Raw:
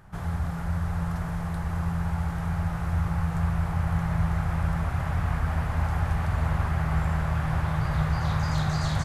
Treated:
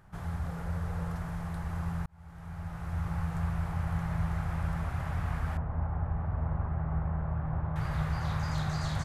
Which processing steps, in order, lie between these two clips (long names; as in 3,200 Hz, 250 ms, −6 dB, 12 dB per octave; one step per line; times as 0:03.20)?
0:00.46–0:01.15: parametric band 480 Hz +9 dB 0.39 octaves
0:02.06–0:03.15: fade in
0:05.57–0:07.76: low-pass filter 1,000 Hz 12 dB per octave
level −6 dB